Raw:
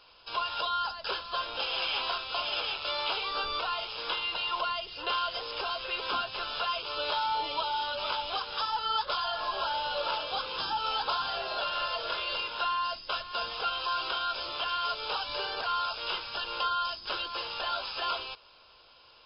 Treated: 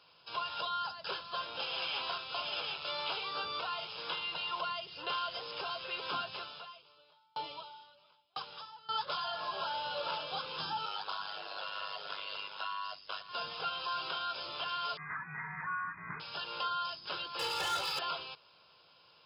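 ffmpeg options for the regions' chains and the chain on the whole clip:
ffmpeg -i in.wav -filter_complex "[0:a]asettb=1/sr,asplit=3[link_01][link_02][link_03];[link_01]atrim=end=6.364[link_04];[link_02]atrim=start=6.36:end=8.89,asetpts=PTS-STARTPTS,afade=type=in:duration=0.004:curve=qsin,afade=type=out:start_time=2.526:duration=0.004:curve=qsin,equalizer=frequency=1600:width=4.3:gain=-3,aeval=exprs='val(0)*pow(10,-39*if(lt(mod(1*n/s,1),2*abs(1)/1000),1-mod(1*n/s,1)/(2*abs(1)/1000),(mod(1*n/s,1)-2*abs(1)/1000)/(1-2*abs(1)/1000))/20)':channel_layout=same[link_05];[link_03]atrim=start=8.886[link_06];[link_04][link_05]acrossfade=duration=0.004:curve1=hsin:curve2=qsin[link_07];[link_07][link_06]acrossfade=duration=0.004:curve1=qsin:curve2=hsin,asettb=1/sr,asplit=3[link_08][link_09][link_10];[link_08]atrim=end=10.854[link_11];[link_09]atrim=start=10.85:end=13.29,asetpts=PTS-STARTPTS,afade=type=in:duration=0.004:curve=qsin,afade=type=out:start_time=2.436:duration=0.004:curve=qsin,aeval=exprs='val(0)*sin(2*PI*50*n/s)':channel_layout=same,equalizer=frequency=110:width=0.36:gain=-9.5[link_12];[link_10]atrim=start=13.286[link_13];[link_11][link_12]acrossfade=duration=0.004:curve1=hsin:curve2=qsin[link_14];[link_14][link_13]acrossfade=duration=0.004:curve1=qsin:curve2=hsin,asettb=1/sr,asplit=3[link_15][link_16][link_17];[link_15]atrim=end=14.974[link_18];[link_16]atrim=start=14.97:end=16.2,asetpts=PTS-STARTPTS,afade=type=in:duration=0.004:curve=qsin,afade=type=out:start_time=1.226:duration=0.004:curve=qsin,lowpass=frequency=2100:width_type=q:width=0.5098,lowpass=frequency=2100:width_type=q:width=0.6013,lowpass=frequency=2100:width_type=q:width=0.9,lowpass=frequency=2100:width_type=q:width=2.563,afreqshift=-2500,asubboost=boost=5.5:cutoff=250[link_19];[link_17]atrim=start=16.196[link_20];[link_18][link_19]acrossfade=duration=0.004:curve1=hsin:curve2=qsin[link_21];[link_21][link_20]acrossfade=duration=0.004:curve1=qsin:curve2=hsin,asettb=1/sr,asplit=3[link_22][link_23][link_24];[link_22]atrim=end=17.394[link_25];[link_23]atrim=start=17.39:end=17.99,asetpts=PTS-STARTPTS,afade=type=in:duration=0.004:curve=qsin,afade=type=out:start_time=0.596:duration=0.004:curve=qsin,volume=35dB,asoftclip=hard,volume=-35dB,aecho=1:1:2.3:0.96,atrim=end_sample=26460,acontrast=54[link_26];[link_24]atrim=start=17.986[link_27];[link_25][link_26]acrossfade=duration=0.004:curve1=hsin:curve2=qsin[link_28];[link_28][link_27]acrossfade=duration=0.004:curve1=qsin:curve2=hsin,highpass=frequency=82:width=0.5412,highpass=frequency=82:width=1.3066,equalizer=frequency=160:width=3.9:gain=12,volume=-5.5dB" out.wav

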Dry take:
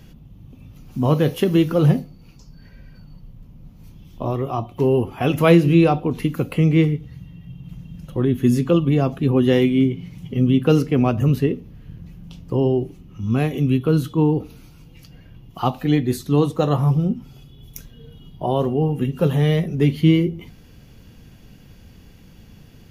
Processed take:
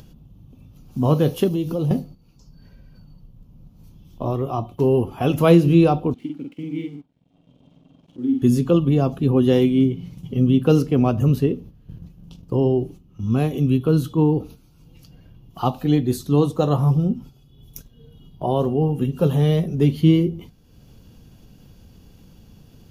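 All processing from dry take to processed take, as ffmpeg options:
ffmpeg -i in.wav -filter_complex "[0:a]asettb=1/sr,asplit=3[link_01][link_02][link_03];[link_01]atrim=end=1.484[link_04];[link_02]atrim=start=1.48:end=1.91,asetpts=PTS-STARTPTS,afade=type=in:duration=0.004:curve=qsin,afade=type=out:start_time=0.426:duration=0.004:curve=qsin,equalizer=frequency=1500:width=2.1:gain=-12,acompressor=threshold=-21dB:ratio=3:attack=3.2:release=140:knee=1:detection=peak[link_05];[link_03]atrim=start=1.906[link_06];[link_04][link_05]acrossfade=duration=0.004:curve1=hsin:curve2=qsin[link_07];[link_07][link_06]acrossfade=duration=0.004:curve1=qsin:curve2=hsin,asettb=1/sr,asplit=3[link_08][link_09][link_10];[link_08]atrim=end=6.144[link_11];[link_09]atrim=start=6.14:end=8.42,asetpts=PTS-STARTPTS,afade=type=in:duration=0.004:curve=qsin,afade=type=out:start_time=2.276:duration=0.004:curve=qsin,asplit=3[link_12][link_13][link_14];[link_12]bandpass=frequency=270:width_type=q:width=8,volume=0dB[link_15];[link_13]bandpass=frequency=2290:width_type=q:width=8,volume=-6dB[link_16];[link_14]bandpass=frequency=3010:width_type=q:width=8,volume=-9dB[link_17];[link_15][link_16][link_17]amix=inputs=3:normalize=0,aeval=exprs='sgn(val(0))*max(abs(val(0))-0.00126,0)':channel_layout=same,asplit=2[link_18][link_19];[link_19]adelay=48,volume=-3dB[link_20];[link_18][link_20]amix=inputs=2:normalize=0,atrim=end_sample=100548[link_21];[link_10]atrim=start=8.416[link_22];[link_11][link_21]acrossfade=duration=0.004:curve1=hsin:curve2=qsin[link_23];[link_23][link_22]acrossfade=duration=0.004:curve1=qsin:curve2=hsin,agate=range=-9dB:threshold=-37dB:ratio=16:detection=peak,equalizer=frequency=2000:width=1.9:gain=-9.5,acompressor=mode=upward:threshold=-38dB:ratio=2.5" out.wav

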